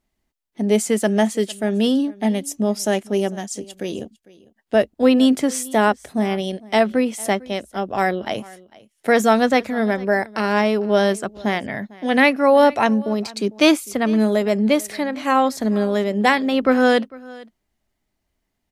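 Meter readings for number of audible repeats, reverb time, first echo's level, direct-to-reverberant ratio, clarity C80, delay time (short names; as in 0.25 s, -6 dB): 1, none, -22.0 dB, none, none, 0.451 s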